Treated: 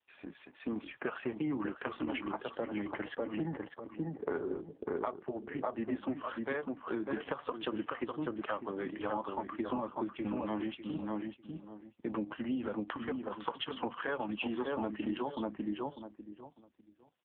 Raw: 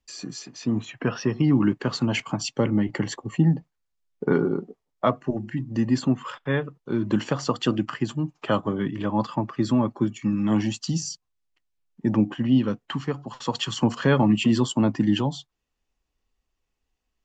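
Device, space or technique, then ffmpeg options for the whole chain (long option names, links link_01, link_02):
voicemail: -filter_complex "[0:a]asettb=1/sr,asplit=3[link_01][link_02][link_03];[link_01]atrim=end=5.714[link_04];[link_02]atrim=start=5.71:end=7.26,asetpts=PTS-STARTPTS,afade=type=in:duration=0.004:curve=qsin,afade=type=out:start_time=1.546:duration=0.004:curve=qsin,bandreject=frequency=50:width_type=h:width=6,bandreject=frequency=100:width_type=h:width=6[link_05];[link_03]atrim=start=7.256[link_06];[link_04][link_05]acrossfade=duration=0.004:curve1=hsin:curve2=qsin[link_07];[link_07][link_06]acrossfade=duration=0.004:curve1=qsin:curve2=hsin,asettb=1/sr,asplit=3[link_08][link_09][link_10];[link_08]atrim=end=12.484[link_11];[link_09]atrim=start=12.48:end=13.25,asetpts=PTS-STARTPTS,afade=type=in:duration=0.004:curve=qsin,afade=type=out:start_time=0.766:duration=0.004:curve=qsin,highpass=frequency=53:poles=1[link_12];[link_10]atrim=start=13.246[link_13];[link_11][link_12]acrossfade=duration=0.004:curve1=hsin:curve2=qsin[link_14];[link_14][link_13]acrossfade=duration=0.004:curve1=qsin:curve2=hsin,highpass=440,lowpass=3200,asplit=2[link_15][link_16];[link_16]adelay=598,lowpass=frequency=1300:poles=1,volume=-4.5dB,asplit=2[link_17][link_18];[link_18]adelay=598,lowpass=frequency=1300:poles=1,volume=0.24,asplit=2[link_19][link_20];[link_20]adelay=598,lowpass=frequency=1300:poles=1,volume=0.24[link_21];[link_15][link_17][link_19][link_21]amix=inputs=4:normalize=0,acompressor=threshold=-30dB:ratio=12" -ar 8000 -c:a libopencore_amrnb -b:a 4750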